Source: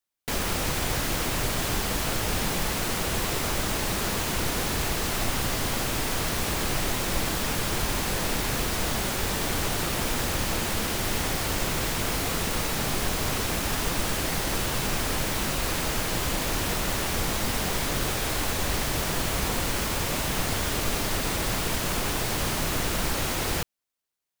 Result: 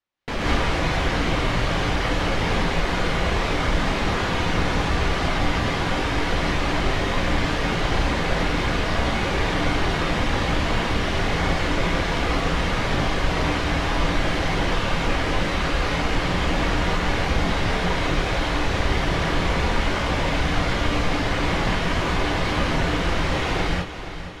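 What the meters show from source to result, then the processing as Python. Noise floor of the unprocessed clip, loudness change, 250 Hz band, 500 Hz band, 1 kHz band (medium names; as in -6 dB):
-29 dBFS, +3.5 dB, +6.5 dB, +6.0 dB, +6.5 dB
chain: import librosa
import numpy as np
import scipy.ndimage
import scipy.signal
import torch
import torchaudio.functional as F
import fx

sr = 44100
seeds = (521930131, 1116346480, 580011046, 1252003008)

p1 = scipy.signal.sosfilt(scipy.signal.butter(2, 3100.0, 'lowpass', fs=sr, output='sos'), x)
p2 = fx.dereverb_blind(p1, sr, rt60_s=1.9)
p3 = 10.0 ** (-32.0 / 20.0) * np.tanh(p2 / 10.0 ** (-32.0 / 20.0))
p4 = p2 + (p3 * librosa.db_to_amplitude(-5.0))
p5 = fx.echo_feedback(p4, sr, ms=473, feedback_pct=59, wet_db=-12.0)
y = fx.rev_gated(p5, sr, seeds[0], gate_ms=230, shape='rising', drr_db=-6.5)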